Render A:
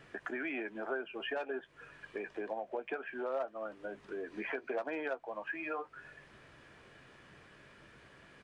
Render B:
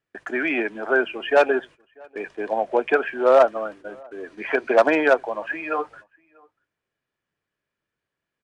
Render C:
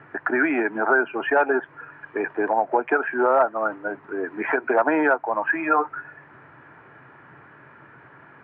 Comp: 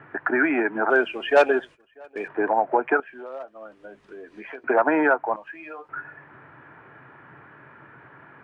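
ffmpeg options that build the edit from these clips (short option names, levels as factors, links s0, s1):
-filter_complex "[0:a]asplit=2[s0][s1];[2:a]asplit=4[s2][s3][s4][s5];[s2]atrim=end=0.902[s6];[1:a]atrim=start=0.898:end=2.282[s7];[s3]atrim=start=2.278:end=3.002[s8];[s0]atrim=start=2.998:end=4.642[s9];[s4]atrim=start=4.638:end=5.362[s10];[s1]atrim=start=5.358:end=5.892[s11];[s5]atrim=start=5.888[s12];[s6][s7]acrossfade=d=0.004:c1=hsin:c2=hsin[s13];[s13][s8]acrossfade=d=0.004:c1=hsin:c2=hsin[s14];[s14][s9]acrossfade=d=0.004:c1=hsin:c2=hsin[s15];[s15][s10]acrossfade=d=0.004:c1=hsin:c2=hsin[s16];[s16][s11]acrossfade=d=0.004:c1=hsin:c2=hsin[s17];[s17][s12]acrossfade=d=0.004:c1=hsin:c2=hsin"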